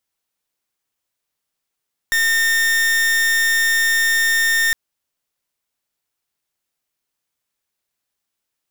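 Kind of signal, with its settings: pulse 1.82 kHz, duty 41% -16.5 dBFS 2.61 s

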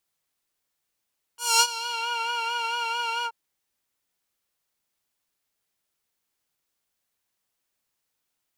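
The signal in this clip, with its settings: synth patch with vibrato A#5, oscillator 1 triangle, interval +7 st, oscillator 2 level -6 dB, sub -11 dB, noise -20 dB, filter bandpass, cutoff 1.1 kHz, Q 1.3, filter envelope 3 oct, filter decay 0.72 s, filter sustain 40%, attack 226 ms, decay 0.06 s, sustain -17 dB, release 0.06 s, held 1.87 s, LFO 4.5 Hz, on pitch 44 cents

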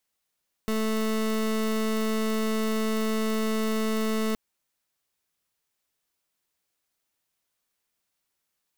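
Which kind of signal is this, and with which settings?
pulse 219 Hz, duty 27% -26 dBFS 3.67 s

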